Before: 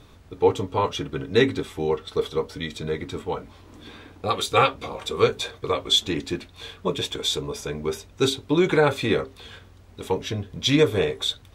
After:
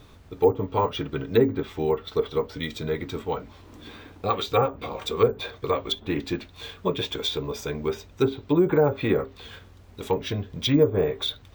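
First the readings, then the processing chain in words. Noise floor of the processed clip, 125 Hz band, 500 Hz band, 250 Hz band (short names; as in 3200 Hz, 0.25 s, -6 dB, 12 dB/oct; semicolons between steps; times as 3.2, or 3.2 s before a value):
-50 dBFS, 0.0 dB, -0.5 dB, 0.0 dB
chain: treble ducked by the level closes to 770 Hz, closed at -15.5 dBFS; careless resampling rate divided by 2×, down none, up hold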